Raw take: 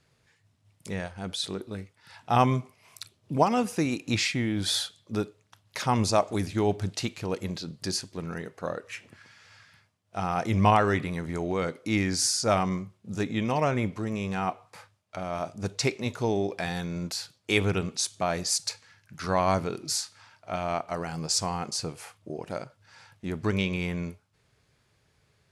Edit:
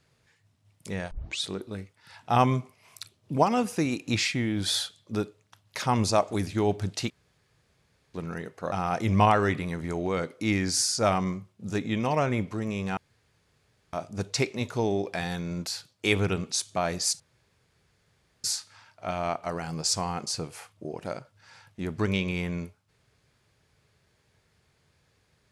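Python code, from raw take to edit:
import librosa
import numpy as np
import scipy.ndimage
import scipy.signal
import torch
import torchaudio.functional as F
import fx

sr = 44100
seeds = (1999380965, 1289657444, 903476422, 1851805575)

y = fx.edit(x, sr, fx.tape_start(start_s=1.11, length_s=0.31),
    fx.room_tone_fill(start_s=7.1, length_s=1.04),
    fx.cut(start_s=8.72, length_s=1.45),
    fx.room_tone_fill(start_s=14.42, length_s=0.96),
    fx.room_tone_fill(start_s=18.65, length_s=1.24), tone=tone)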